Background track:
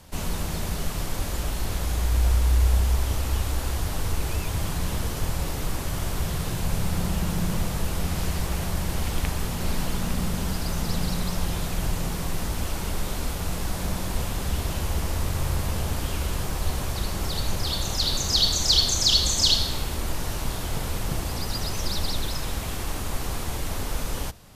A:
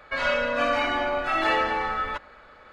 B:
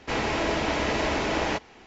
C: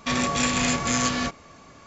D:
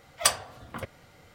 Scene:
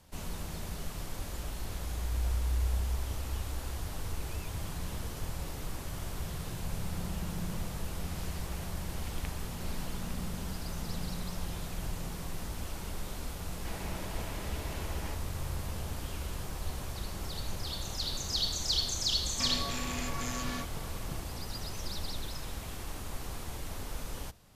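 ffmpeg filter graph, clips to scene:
ffmpeg -i bed.wav -i cue0.wav -i cue1.wav -i cue2.wav -filter_complex "[0:a]volume=-10.5dB[link_01];[2:a]alimiter=limit=-23dB:level=0:latency=1:release=71[link_02];[3:a]acompressor=threshold=-31dB:ratio=6:attack=3.2:release=140:knee=1:detection=peak[link_03];[link_02]atrim=end=1.86,asetpts=PTS-STARTPTS,volume=-13.5dB,afade=type=in:duration=0.004:curve=hsin,afade=type=out:start_time=1.856:duration=0.004:curve=hsin,adelay=13570[link_04];[link_03]atrim=end=1.86,asetpts=PTS-STARTPTS,volume=-3.5dB,afade=type=in:duration=0.004:curve=hsin,afade=type=out:start_time=1.856:duration=0.004:curve=hsin,adelay=19340[link_05];[link_01][link_04][link_05]amix=inputs=3:normalize=0" out.wav

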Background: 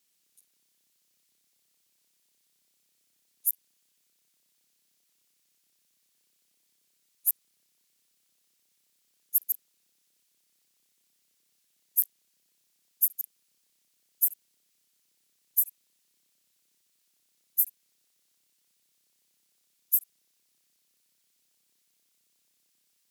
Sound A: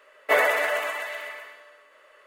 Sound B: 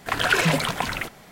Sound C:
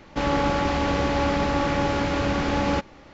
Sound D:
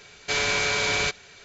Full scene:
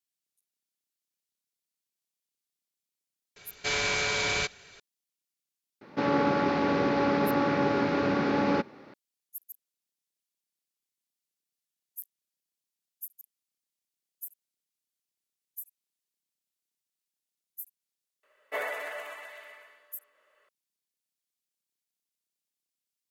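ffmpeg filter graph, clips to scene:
ffmpeg -i bed.wav -i cue0.wav -i cue1.wav -i cue2.wav -i cue3.wav -filter_complex "[0:a]volume=-17dB[link_01];[3:a]highpass=frequency=120:width=0.5412,highpass=frequency=120:width=1.3066,equalizer=frequency=240:width_type=q:width=4:gain=5,equalizer=frequency=410:width_type=q:width=4:gain=8,equalizer=frequency=1400:width_type=q:width=4:gain=3,equalizer=frequency=3100:width_type=q:width=4:gain=-6,lowpass=frequency=5100:width=0.5412,lowpass=frequency=5100:width=1.3066[link_02];[4:a]atrim=end=1.44,asetpts=PTS-STARTPTS,volume=-4dB,afade=type=in:duration=0.004:curve=hsin,afade=type=out:start_time=1.436:duration=0.004:curve=hsin,adelay=3360[link_03];[link_02]atrim=end=3.13,asetpts=PTS-STARTPTS,volume=-4dB,afade=type=in:duration=0.004:curve=hsin,afade=type=out:start_time=3.126:duration=0.004:curve=hsin,adelay=256221S[link_04];[1:a]atrim=end=2.26,asetpts=PTS-STARTPTS,volume=-13dB,afade=type=in:duration=0.004:curve=hsin,afade=type=out:start_time=2.256:duration=0.004:curve=hsin,adelay=18230[link_05];[link_01][link_03][link_04][link_05]amix=inputs=4:normalize=0" out.wav

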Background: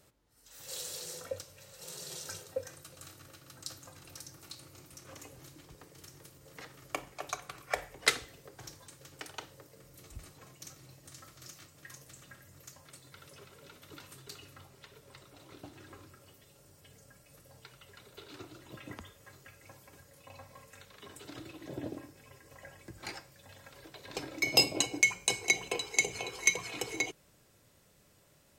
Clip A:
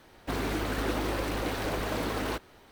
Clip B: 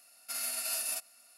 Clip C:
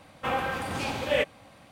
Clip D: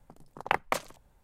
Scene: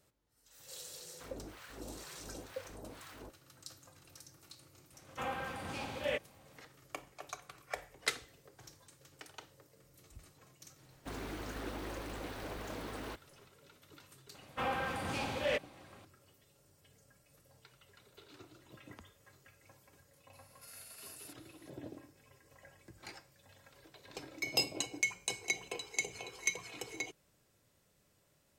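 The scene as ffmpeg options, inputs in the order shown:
ffmpeg -i bed.wav -i cue0.wav -i cue1.wav -i cue2.wav -filter_complex "[1:a]asplit=2[link_01][link_02];[3:a]asplit=2[link_03][link_04];[0:a]volume=-7.5dB[link_05];[link_01]acrossover=split=920[link_06][link_07];[link_06]aeval=exprs='val(0)*(1-1/2+1/2*cos(2*PI*2.1*n/s))':channel_layout=same[link_08];[link_07]aeval=exprs='val(0)*(1-1/2-1/2*cos(2*PI*2.1*n/s))':channel_layout=same[link_09];[link_08][link_09]amix=inputs=2:normalize=0[link_10];[link_04]asoftclip=type=tanh:threshold=-21dB[link_11];[2:a]acompressor=mode=upward:threshold=-37dB:ratio=2.5:attack=3.2:release=140:knee=2.83:detection=peak[link_12];[link_10]atrim=end=2.71,asetpts=PTS-STARTPTS,volume=-15dB,afade=type=in:duration=0.004:curve=hsin,afade=type=out:start_time=2.706:duration=0.004:curve=hsin,adelay=920[link_13];[link_03]atrim=end=1.71,asetpts=PTS-STARTPTS,volume=-10.5dB,afade=type=in:duration=0.004:curve=hsin,afade=type=out:start_time=1.706:duration=0.004:curve=hsin,adelay=4940[link_14];[link_02]atrim=end=2.71,asetpts=PTS-STARTPTS,volume=-12dB,afade=type=in:duration=0.004:curve=hsin,afade=type=out:start_time=2.706:duration=0.004:curve=hsin,adelay=10780[link_15];[link_11]atrim=end=1.71,asetpts=PTS-STARTPTS,volume=-5.5dB,afade=type=in:duration=0.004:curve=hsin,afade=type=out:start_time=1.706:duration=0.004:curve=hsin,adelay=14340[link_16];[link_12]atrim=end=1.37,asetpts=PTS-STARTPTS,volume=-17.5dB,afade=type=in:duration=0.004:curve=hsin,afade=type=out:start_time=1.366:duration=0.004:curve=hsin,adelay=20330[link_17];[link_05][link_13][link_14][link_15][link_16][link_17]amix=inputs=6:normalize=0" out.wav

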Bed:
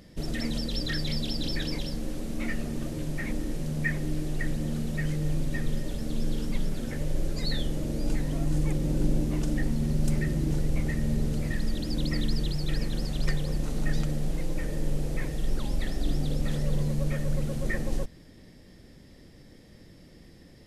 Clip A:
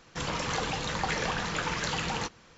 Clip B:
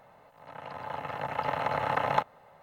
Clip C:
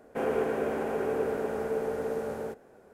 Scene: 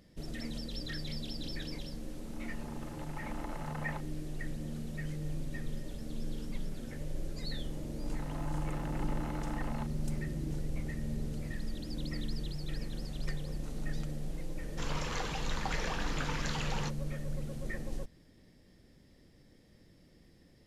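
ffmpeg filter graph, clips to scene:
ffmpeg -i bed.wav -i cue0.wav -i cue1.wav -filter_complex "[2:a]asplit=2[link_01][link_02];[0:a]volume=-9.5dB[link_03];[link_01]alimiter=limit=-15.5dB:level=0:latency=1:release=71[link_04];[link_02]acompressor=threshold=-34dB:ratio=6:attack=3.2:release=140:knee=1:detection=peak[link_05];[link_04]atrim=end=2.62,asetpts=PTS-STARTPTS,volume=-16dB,afade=type=in:duration=0.004:curve=hsin,afade=type=out:start_time=2.616:duration=0.004:curve=hsin,adelay=1780[link_06];[link_05]atrim=end=2.62,asetpts=PTS-STARTPTS,volume=-6.5dB,afade=type=in:duration=0.004:curve=hsin,afade=type=out:start_time=2.616:duration=0.004:curve=hsin,adelay=7640[link_07];[1:a]atrim=end=2.57,asetpts=PTS-STARTPTS,volume=-7dB,afade=type=in:duration=0.004:curve=hsin,afade=type=out:start_time=2.566:duration=0.004:curve=hsin,adelay=14620[link_08];[link_03][link_06][link_07][link_08]amix=inputs=4:normalize=0" out.wav

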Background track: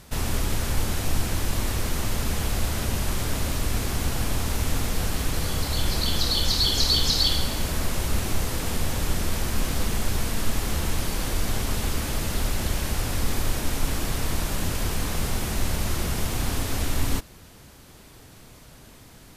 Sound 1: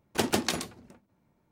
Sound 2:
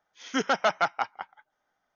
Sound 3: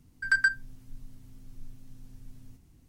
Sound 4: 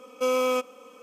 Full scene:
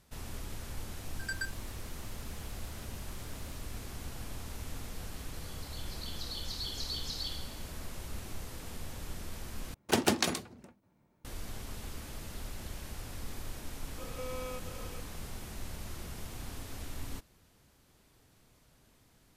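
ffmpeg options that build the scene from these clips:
ffmpeg -i bed.wav -i cue0.wav -i cue1.wav -i cue2.wav -i cue3.wav -filter_complex "[0:a]volume=-16.5dB[link_01];[3:a]aderivative[link_02];[4:a]acompressor=threshold=-40dB:ratio=6:attack=3.2:release=140:knee=1:detection=peak[link_03];[link_01]asplit=2[link_04][link_05];[link_04]atrim=end=9.744[link_06];[1:a]atrim=end=1.51,asetpts=PTS-STARTPTS,volume=-0.5dB[link_07];[link_05]atrim=start=11.246[link_08];[link_02]atrim=end=2.88,asetpts=PTS-STARTPTS,volume=-2dB,afade=type=in:duration=0.004:curve=hsin,afade=type=out:start_time=2.876:duration=0.004:curve=hsin,adelay=970[link_09];[link_03]atrim=end=1.02,asetpts=PTS-STARTPTS,volume=-0.5dB,afade=type=in:duration=0.004:curve=hsin,afade=type=out:start_time=1.016:duration=0.004:curve=hsin,adelay=13980[link_10];[link_06][link_07]acrossfade=duration=0.004:curve1=hsin:curve2=hsin[link_11];[link_11][link_08]acrossfade=duration=0.004:curve1=hsin:curve2=hsin[link_12];[link_12][link_09][link_10]amix=inputs=3:normalize=0" out.wav

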